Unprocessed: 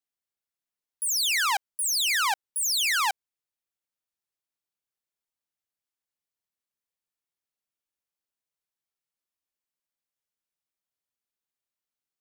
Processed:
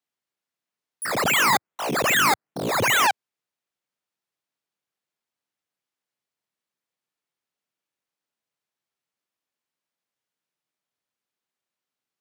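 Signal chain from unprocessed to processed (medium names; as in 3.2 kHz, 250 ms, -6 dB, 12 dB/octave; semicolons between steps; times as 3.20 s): low-pass 3.8 kHz 6 dB/octave; 1.05–3.07 s: decimation with a swept rate 12×, swing 60% 2.5 Hz; high-pass 110 Hz 24 dB/octave; trim +7 dB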